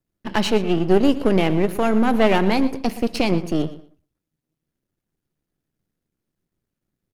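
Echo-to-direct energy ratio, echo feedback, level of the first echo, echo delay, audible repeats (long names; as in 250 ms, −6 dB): −16.0 dB, 19%, −16.0 dB, 118 ms, 2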